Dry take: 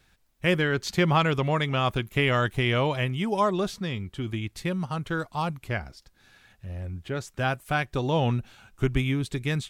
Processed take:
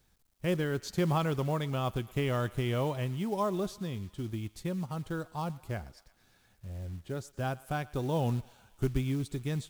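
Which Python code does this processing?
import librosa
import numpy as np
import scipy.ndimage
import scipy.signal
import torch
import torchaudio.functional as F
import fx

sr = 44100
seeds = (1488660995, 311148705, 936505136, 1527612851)

y = fx.peak_eq(x, sr, hz=2200.0, db=-10.0, octaves=1.7)
y = fx.quant_companded(y, sr, bits=6)
y = fx.echo_thinned(y, sr, ms=116, feedback_pct=77, hz=690.0, wet_db=-20.0)
y = F.gain(torch.from_numpy(y), -5.0).numpy()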